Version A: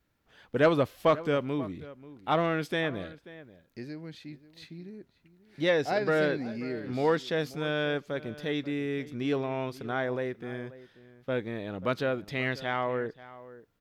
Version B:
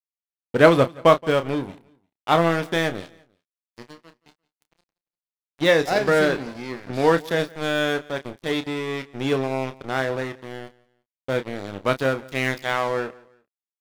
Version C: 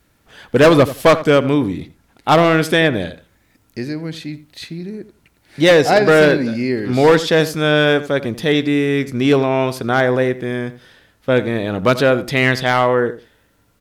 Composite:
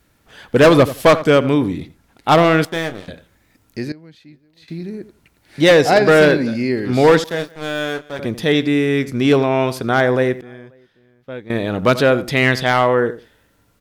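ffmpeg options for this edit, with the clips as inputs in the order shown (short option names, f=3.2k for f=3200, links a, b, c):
-filter_complex "[1:a]asplit=2[a][b];[0:a]asplit=2[c][d];[2:a]asplit=5[e][f][g][h][i];[e]atrim=end=2.652[j];[a]atrim=start=2.648:end=3.082[k];[f]atrim=start=3.078:end=3.922[l];[c]atrim=start=3.918:end=4.682[m];[g]atrim=start=4.678:end=7.242[n];[b]atrim=start=7.238:end=8.192[o];[h]atrim=start=8.188:end=10.412[p];[d]atrim=start=10.408:end=11.502[q];[i]atrim=start=11.498[r];[j][k]acrossfade=d=0.004:c1=hsin:c2=hsin[s];[s][l]acrossfade=d=0.004:c1=hsin:c2=hsin[t];[t][m]acrossfade=d=0.004:c1=hsin:c2=hsin[u];[u][n]acrossfade=d=0.004:c1=hsin:c2=hsin[v];[v][o]acrossfade=d=0.004:c1=hsin:c2=hsin[w];[w][p]acrossfade=d=0.004:c1=hsin:c2=hsin[x];[x][q]acrossfade=d=0.004:c1=hsin:c2=hsin[y];[y][r]acrossfade=d=0.004:c1=hsin:c2=hsin"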